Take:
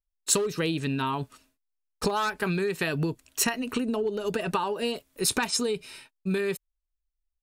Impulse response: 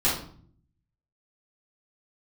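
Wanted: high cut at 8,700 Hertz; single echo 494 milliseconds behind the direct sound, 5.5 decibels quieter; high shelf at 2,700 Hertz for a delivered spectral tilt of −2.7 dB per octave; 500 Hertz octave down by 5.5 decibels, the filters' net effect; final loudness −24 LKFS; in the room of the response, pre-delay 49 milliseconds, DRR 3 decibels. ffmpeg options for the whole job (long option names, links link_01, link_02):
-filter_complex "[0:a]lowpass=8700,equalizer=frequency=500:width_type=o:gain=-7.5,highshelf=frequency=2700:gain=7.5,aecho=1:1:494:0.531,asplit=2[link_01][link_02];[1:a]atrim=start_sample=2205,adelay=49[link_03];[link_02][link_03]afir=irnorm=-1:irlink=0,volume=-16dB[link_04];[link_01][link_04]amix=inputs=2:normalize=0,volume=0.5dB"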